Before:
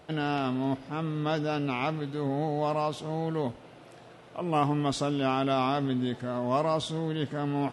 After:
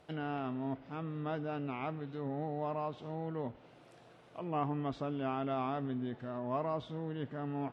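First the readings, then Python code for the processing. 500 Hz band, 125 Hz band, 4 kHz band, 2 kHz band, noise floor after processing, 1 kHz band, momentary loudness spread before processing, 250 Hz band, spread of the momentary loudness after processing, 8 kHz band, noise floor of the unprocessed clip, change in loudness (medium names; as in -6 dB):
-8.5 dB, -8.5 dB, -16.5 dB, -10.5 dB, -60 dBFS, -8.5 dB, 6 LU, -8.5 dB, 6 LU, under -25 dB, -51 dBFS, -9.0 dB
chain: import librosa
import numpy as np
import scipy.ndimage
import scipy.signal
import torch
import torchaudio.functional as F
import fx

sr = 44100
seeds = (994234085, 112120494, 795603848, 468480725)

y = fx.env_lowpass_down(x, sr, base_hz=2200.0, full_db=-27.0)
y = F.gain(torch.from_numpy(y), -8.5).numpy()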